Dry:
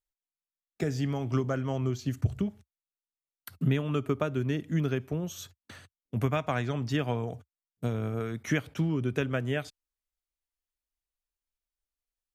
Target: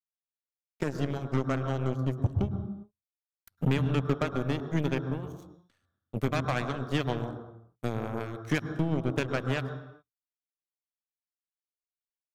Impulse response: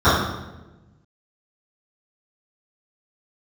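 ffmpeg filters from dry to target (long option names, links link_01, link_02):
-filter_complex "[0:a]aeval=exprs='0.211*(cos(1*acos(clip(val(0)/0.211,-1,1)))-cos(1*PI/2))+0.0168*(cos(4*acos(clip(val(0)/0.211,-1,1)))-cos(4*PI/2))+0.00596*(cos(5*acos(clip(val(0)/0.211,-1,1)))-cos(5*PI/2))+0.0335*(cos(7*acos(clip(val(0)/0.211,-1,1)))-cos(7*PI/2))':channel_layout=same,asoftclip=type=tanh:threshold=-18dB,asplit=2[link_01][link_02];[1:a]atrim=start_sample=2205,afade=type=out:start_time=0.37:duration=0.01,atrim=end_sample=16758,adelay=100[link_03];[link_02][link_03]afir=irnorm=-1:irlink=0,volume=-34.5dB[link_04];[link_01][link_04]amix=inputs=2:normalize=0,volume=2dB"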